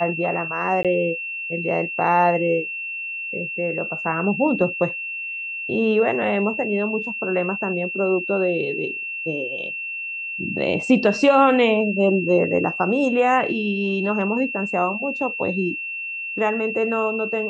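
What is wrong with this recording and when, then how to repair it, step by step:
tone 2700 Hz -27 dBFS
0.83–0.85 gap 17 ms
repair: notch 2700 Hz, Q 30; interpolate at 0.83, 17 ms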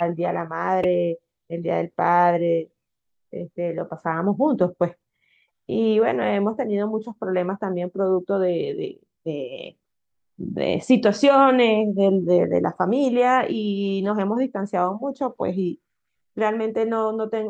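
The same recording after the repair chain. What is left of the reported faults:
none

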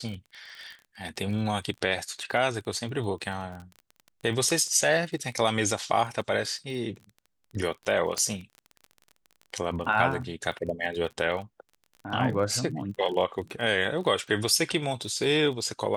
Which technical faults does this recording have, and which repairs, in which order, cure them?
crackle 27/s -36 dBFS
8.18 pop -15 dBFS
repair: de-click

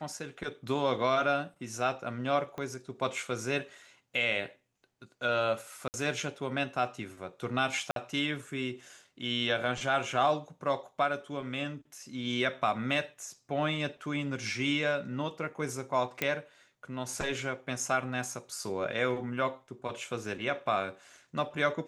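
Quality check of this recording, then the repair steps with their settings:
2.58 pop -26 dBFS
5.88–5.94 gap 59 ms
7.91–7.96 gap 52 ms
16.22 pop -13 dBFS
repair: de-click; interpolate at 5.88, 59 ms; interpolate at 7.91, 52 ms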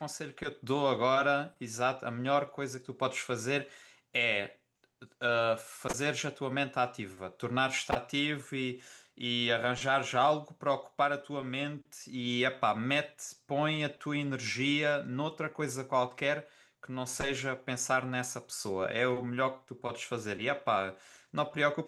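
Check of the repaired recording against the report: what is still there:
2.58 pop

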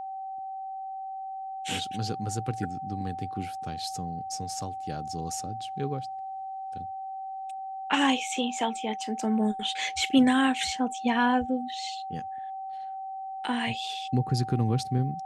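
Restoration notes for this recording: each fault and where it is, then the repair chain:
tone 770 Hz -34 dBFS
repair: notch 770 Hz, Q 30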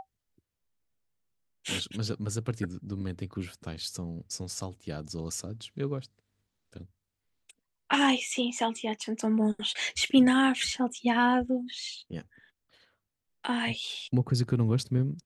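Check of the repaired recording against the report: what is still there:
none

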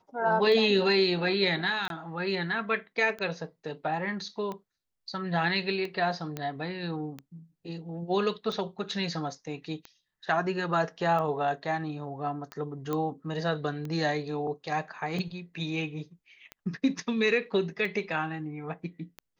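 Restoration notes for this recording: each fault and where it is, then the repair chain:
tick 45 rpm -24 dBFS
1.88–1.9 gap 22 ms
6.37 pop -19 dBFS
12.93 pop -18 dBFS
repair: de-click; interpolate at 1.88, 22 ms

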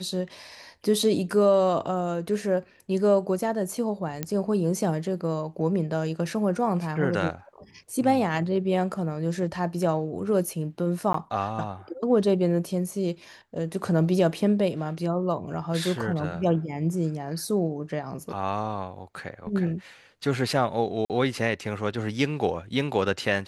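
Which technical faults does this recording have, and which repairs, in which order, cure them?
4.23 pop -13 dBFS
11.13–11.14 gap 13 ms
21.05–21.1 gap 48 ms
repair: de-click; interpolate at 11.13, 13 ms; interpolate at 21.05, 48 ms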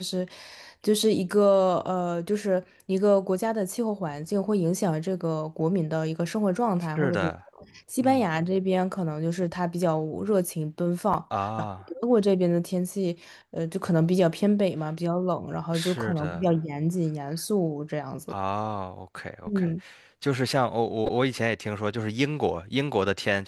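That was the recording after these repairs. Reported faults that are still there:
none

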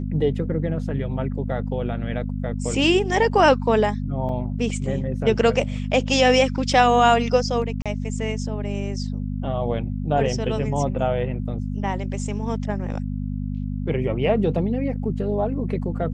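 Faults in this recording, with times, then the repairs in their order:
hum 50 Hz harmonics 5 -27 dBFS
4.29 gap 2.9 ms
7.82–7.86 gap 36 ms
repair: de-hum 50 Hz, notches 5; interpolate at 4.29, 2.9 ms; interpolate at 7.82, 36 ms

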